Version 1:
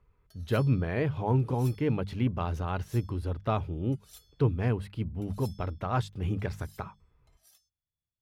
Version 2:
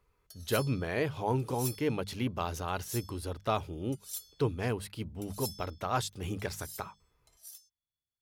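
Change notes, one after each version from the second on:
master: add bass and treble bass −8 dB, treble +14 dB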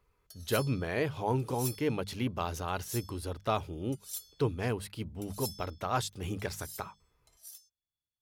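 nothing changed

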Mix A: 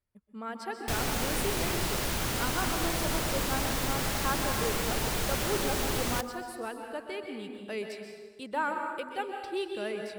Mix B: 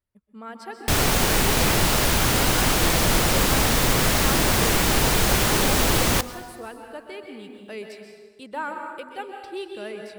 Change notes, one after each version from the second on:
background +11.0 dB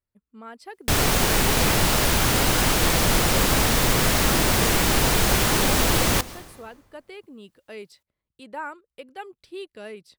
speech: send off

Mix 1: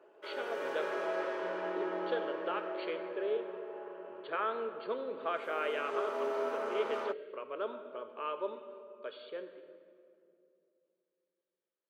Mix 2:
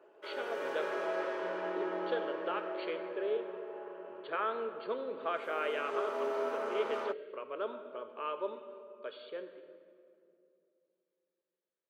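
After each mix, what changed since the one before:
nothing changed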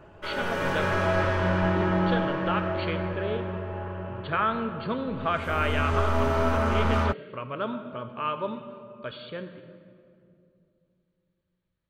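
background +3.0 dB
master: remove four-pole ladder high-pass 360 Hz, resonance 55%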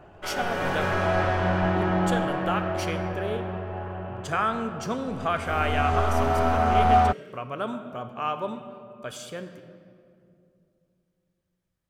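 speech: remove linear-phase brick-wall low-pass 4,600 Hz
master: remove Butterworth band-reject 740 Hz, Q 6.9

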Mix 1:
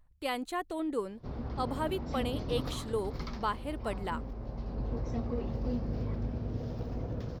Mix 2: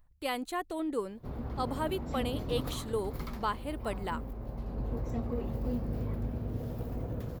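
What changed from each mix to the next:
background: add high shelf with overshoot 7,200 Hz +11 dB, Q 3
master: add high-shelf EQ 12,000 Hz +8 dB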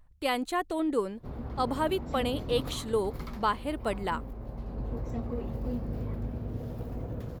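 speech +5.0 dB
master: add high-shelf EQ 12,000 Hz −8 dB

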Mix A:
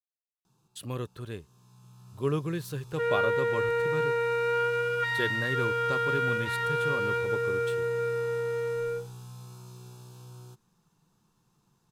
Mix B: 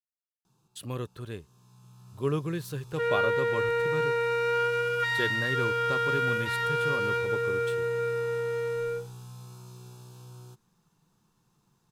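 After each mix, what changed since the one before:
second sound: add high-shelf EQ 5,200 Hz +12 dB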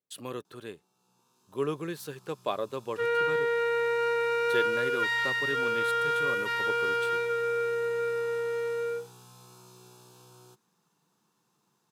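speech: entry −0.65 s
master: add high-pass filter 250 Hz 12 dB per octave

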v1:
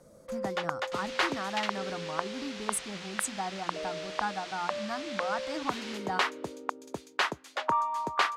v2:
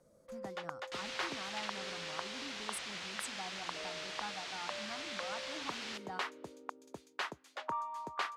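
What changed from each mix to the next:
speech −11.5 dB
first sound −10.5 dB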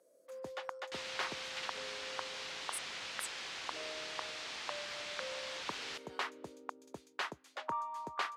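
speech: add first difference

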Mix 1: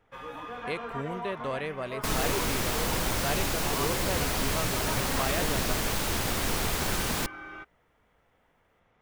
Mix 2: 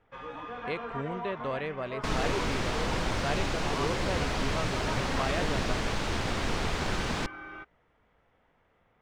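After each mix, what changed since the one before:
master: add high-frequency loss of the air 110 metres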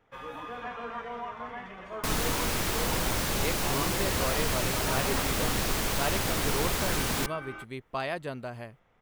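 speech: entry +2.75 s
master: remove high-frequency loss of the air 110 metres

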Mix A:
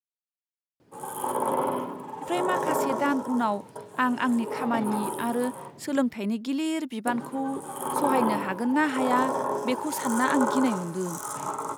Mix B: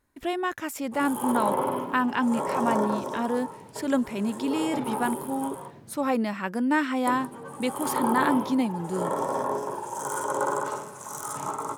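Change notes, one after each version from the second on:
speech: entry −2.05 s
master: remove high-pass filter 110 Hz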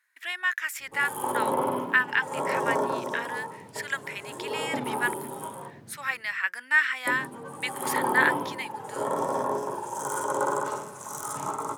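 speech: add high-pass with resonance 1,800 Hz, resonance Q 3.4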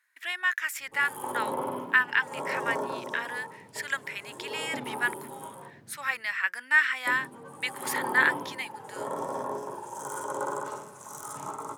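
background −5.5 dB

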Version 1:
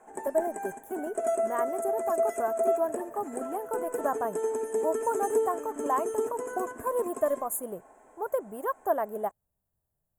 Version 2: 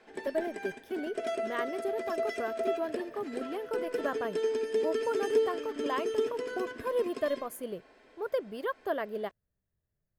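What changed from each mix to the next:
master: remove drawn EQ curve 490 Hz 0 dB, 820 Hz +11 dB, 4,800 Hz −25 dB, 7,000 Hz +13 dB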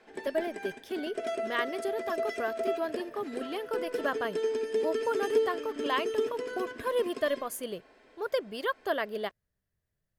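speech: add parametric band 4,700 Hz +11 dB 2.9 octaves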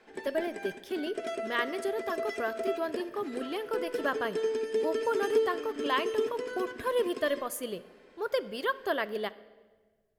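speech: send on
master: add parametric band 660 Hz −3 dB 0.32 octaves

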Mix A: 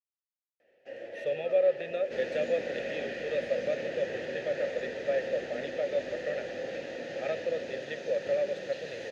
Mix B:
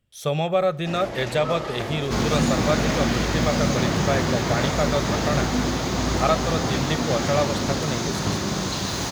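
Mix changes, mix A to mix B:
speech: entry −1.00 s
master: remove formant filter e

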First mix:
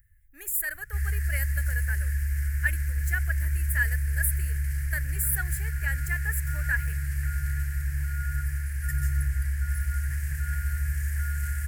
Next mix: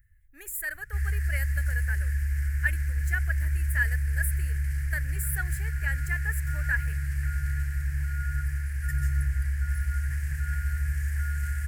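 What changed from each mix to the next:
master: add high-shelf EQ 8,700 Hz −9.5 dB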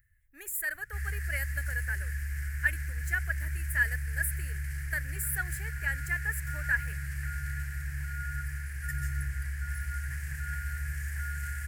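master: add low-shelf EQ 110 Hz −10.5 dB

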